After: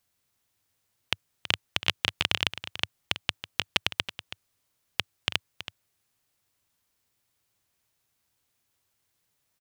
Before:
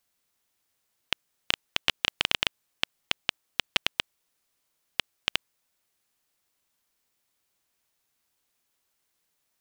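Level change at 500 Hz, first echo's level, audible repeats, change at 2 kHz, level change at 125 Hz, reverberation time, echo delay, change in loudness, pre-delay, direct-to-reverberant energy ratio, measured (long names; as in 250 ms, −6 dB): +0.5 dB, −13.0 dB, 1, 0.0 dB, +8.0 dB, no reverb audible, 326 ms, 0.0 dB, no reverb audible, no reverb audible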